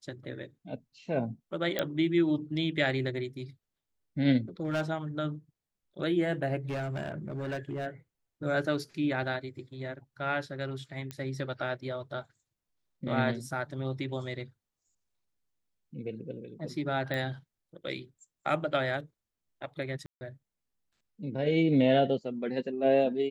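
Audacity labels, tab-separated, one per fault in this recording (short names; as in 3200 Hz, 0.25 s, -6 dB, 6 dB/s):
1.790000	1.790000	pop -14 dBFS
4.640000	4.900000	clipped -26 dBFS
6.690000	7.870000	clipped -30.5 dBFS
11.110000	11.110000	pop -23 dBFS
17.140000	17.140000	pop -21 dBFS
20.060000	20.210000	gap 0.15 s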